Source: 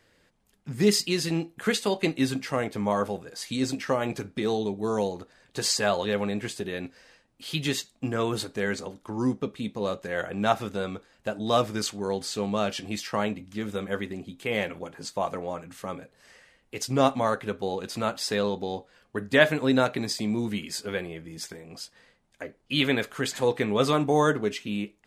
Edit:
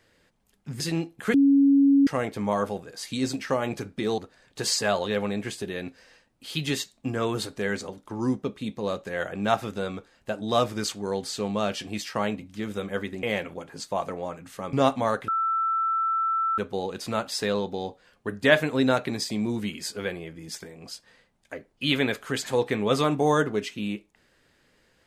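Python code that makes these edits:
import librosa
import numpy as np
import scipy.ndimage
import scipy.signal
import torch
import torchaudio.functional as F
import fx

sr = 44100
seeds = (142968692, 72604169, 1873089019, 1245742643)

y = fx.edit(x, sr, fx.cut(start_s=0.8, length_s=0.39),
    fx.bleep(start_s=1.73, length_s=0.73, hz=278.0, db=-14.5),
    fx.cut(start_s=4.57, length_s=0.59),
    fx.cut(start_s=14.21, length_s=0.27),
    fx.cut(start_s=15.98, length_s=0.94),
    fx.insert_tone(at_s=17.47, length_s=1.3, hz=1330.0, db=-22.0), tone=tone)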